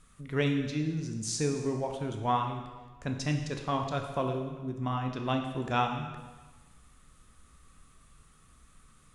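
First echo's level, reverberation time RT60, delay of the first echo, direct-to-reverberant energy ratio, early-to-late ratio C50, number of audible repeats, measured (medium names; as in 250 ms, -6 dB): no echo, 1.3 s, no echo, 3.5 dB, 6.0 dB, no echo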